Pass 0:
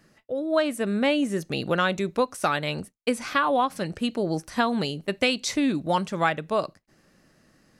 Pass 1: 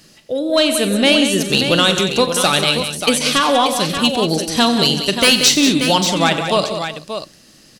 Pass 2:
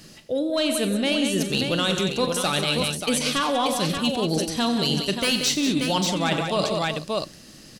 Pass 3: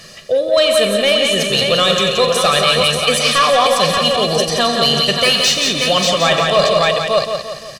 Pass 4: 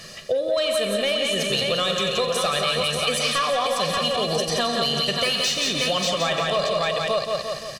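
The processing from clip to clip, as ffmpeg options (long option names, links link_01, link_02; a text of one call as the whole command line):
ffmpeg -i in.wav -filter_complex "[0:a]highshelf=frequency=2400:width_type=q:width=1.5:gain=9.5,aeval=exprs='0.75*sin(PI/2*2.51*val(0)/0.75)':channel_layout=same,asplit=2[link_01][link_02];[link_02]aecho=0:1:42|90|133|185|378|583:0.2|0.2|0.158|0.355|0.119|0.376[link_03];[link_01][link_03]amix=inputs=2:normalize=0,volume=-3.5dB" out.wav
ffmpeg -i in.wav -af "lowshelf=frequency=330:gain=4.5,areverse,acompressor=threshold=-21dB:ratio=5,areverse" out.wav
ffmpeg -i in.wav -filter_complex "[0:a]aecho=1:1:1.7:0.76,asplit=2[link_01][link_02];[link_02]highpass=frequency=720:poles=1,volume=10dB,asoftclip=type=tanh:threshold=-8dB[link_03];[link_01][link_03]amix=inputs=2:normalize=0,lowpass=frequency=4000:poles=1,volume=-6dB,aecho=1:1:172|344|516|688|860|1032:0.473|0.227|0.109|0.0523|0.0251|0.0121,volume=5.5dB" out.wav
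ffmpeg -i in.wav -af "acompressor=threshold=-18dB:ratio=6,volume=-2dB" out.wav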